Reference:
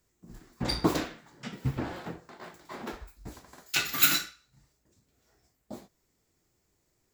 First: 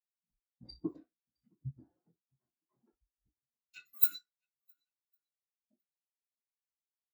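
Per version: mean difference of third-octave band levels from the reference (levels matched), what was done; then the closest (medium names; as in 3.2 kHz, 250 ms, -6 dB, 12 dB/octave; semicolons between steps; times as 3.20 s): 24.0 dB: treble shelf 7.4 kHz +7 dB; shuffle delay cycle 1106 ms, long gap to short 1.5:1, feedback 31%, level -16 dB; spectral contrast expander 2.5:1; trim -9 dB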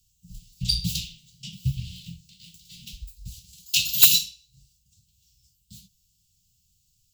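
15.0 dB: Chebyshev band-stop 190–2800 Hz, order 5; peaking EQ 340 Hz -11 dB 2.1 oct; in parallel at -8.5 dB: integer overflow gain 11 dB; on the sum: trim +6.5 dB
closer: second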